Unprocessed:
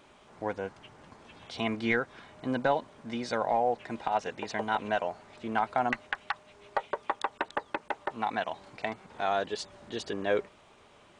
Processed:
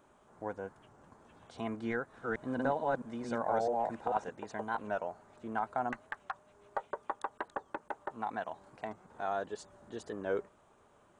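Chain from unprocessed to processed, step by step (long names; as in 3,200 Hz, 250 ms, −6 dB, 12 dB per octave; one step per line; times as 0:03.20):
0:01.92–0:04.29: delay that plays each chunk backwards 220 ms, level 0 dB
flat-topped bell 3,300 Hz −10 dB
wow of a warped record 45 rpm, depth 100 cents
level −6 dB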